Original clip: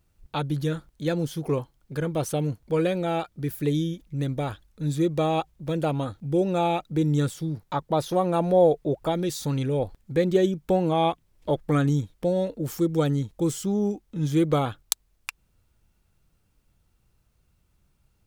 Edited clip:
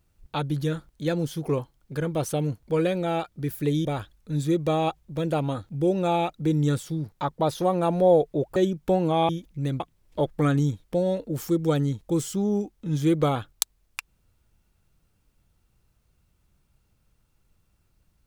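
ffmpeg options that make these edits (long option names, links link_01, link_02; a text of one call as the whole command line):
ffmpeg -i in.wav -filter_complex "[0:a]asplit=5[link_01][link_02][link_03][link_04][link_05];[link_01]atrim=end=3.852[link_06];[link_02]atrim=start=4.358:end=9.072[link_07];[link_03]atrim=start=10.368:end=11.102[link_08];[link_04]atrim=start=3.848:end=4.362[link_09];[link_05]atrim=start=11.098[link_10];[link_06][link_07]acrossfade=duration=0.004:curve1=hsin:curve2=hsin[link_11];[link_11][link_08]acrossfade=duration=0.004:curve1=hsin:curve2=hsin[link_12];[link_12][link_09]acrossfade=duration=0.004:curve1=hsin:curve2=hsin[link_13];[link_13][link_10]acrossfade=duration=0.004:curve1=hsin:curve2=hsin" out.wav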